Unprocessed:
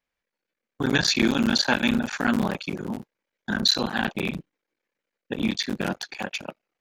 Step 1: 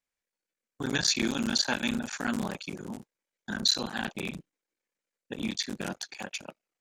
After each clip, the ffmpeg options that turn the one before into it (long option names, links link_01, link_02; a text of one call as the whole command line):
ffmpeg -i in.wav -af "equalizer=frequency=7800:width=0.95:gain=11,volume=-8dB" out.wav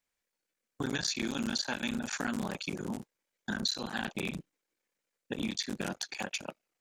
ffmpeg -i in.wav -af "acompressor=threshold=-35dB:ratio=4,volume=3.5dB" out.wav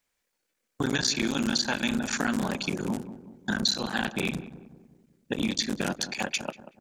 ffmpeg -i in.wav -filter_complex "[0:a]asplit=2[link_01][link_02];[link_02]adelay=188,lowpass=frequency=970:poles=1,volume=-12dB,asplit=2[link_03][link_04];[link_04]adelay=188,lowpass=frequency=970:poles=1,volume=0.51,asplit=2[link_05][link_06];[link_06]adelay=188,lowpass=frequency=970:poles=1,volume=0.51,asplit=2[link_07][link_08];[link_08]adelay=188,lowpass=frequency=970:poles=1,volume=0.51,asplit=2[link_09][link_10];[link_10]adelay=188,lowpass=frequency=970:poles=1,volume=0.51[link_11];[link_01][link_03][link_05][link_07][link_09][link_11]amix=inputs=6:normalize=0,volume=6.5dB" out.wav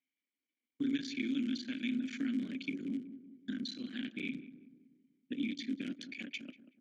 ffmpeg -i in.wav -filter_complex "[0:a]asplit=3[link_01][link_02][link_03];[link_01]bandpass=frequency=270:width_type=q:width=8,volume=0dB[link_04];[link_02]bandpass=frequency=2290:width_type=q:width=8,volume=-6dB[link_05];[link_03]bandpass=frequency=3010:width_type=q:width=8,volume=-9dB[link_06];[link_04][link_05][link_06]amix=inputs=3:normalize=0" out.wav